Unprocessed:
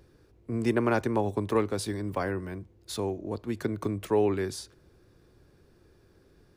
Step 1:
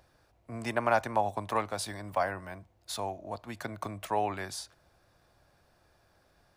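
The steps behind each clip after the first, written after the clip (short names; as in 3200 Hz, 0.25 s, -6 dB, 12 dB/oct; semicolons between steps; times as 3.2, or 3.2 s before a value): resonant low shelf 520 Hz -8 dB, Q 3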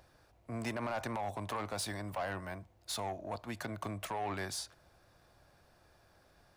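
limiter -25 dBFS, peak gain reduction 11.5 dB; soft clip -31.5 dBFS, distortion -13 dB; gain +1 dB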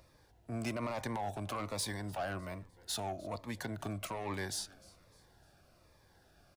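frequency-shifting echo 0.302 s, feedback 43%, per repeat -100 Hz, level -23 dB; cascading phaser falling 1.2 Hz; gain +1.5 dB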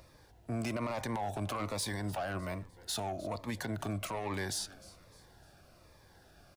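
limiter -33.5 dBFS, peak gain reduction 6 dB; gain +5 dB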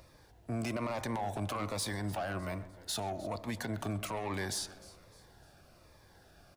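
tape echo 0.131 s, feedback 62%, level -14 dB, low-pass 1700 Hz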